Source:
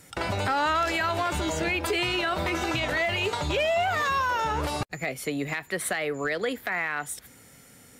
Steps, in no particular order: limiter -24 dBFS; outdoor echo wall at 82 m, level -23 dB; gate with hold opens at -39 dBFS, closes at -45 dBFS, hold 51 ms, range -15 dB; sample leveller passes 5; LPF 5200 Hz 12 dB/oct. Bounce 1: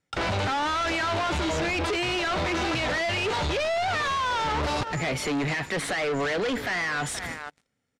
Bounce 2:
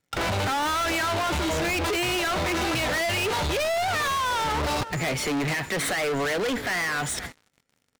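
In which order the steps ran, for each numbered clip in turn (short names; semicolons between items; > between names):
gate with hold > outdoor echo > sample leveller > LPF > limiter; LPF > limiter > outdoor echo > gate with hold > sample leveller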